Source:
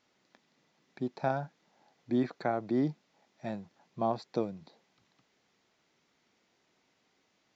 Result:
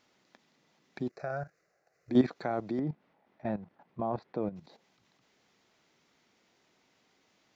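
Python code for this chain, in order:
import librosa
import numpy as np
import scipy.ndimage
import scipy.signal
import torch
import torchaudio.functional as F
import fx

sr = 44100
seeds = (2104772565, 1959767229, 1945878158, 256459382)

y = fx.lowpass(x, sr, hz=1900.0, slope=12, at=(2.79, 4.56))
y = fx.level_steps(y, sr, step_db=13)
y = fx.fixed_phaser(y, sr, hz=900.0, stages=6, at=(1.09, 2.11))
y = F.gain(torch.from_numpy(y), 7.5).numpy()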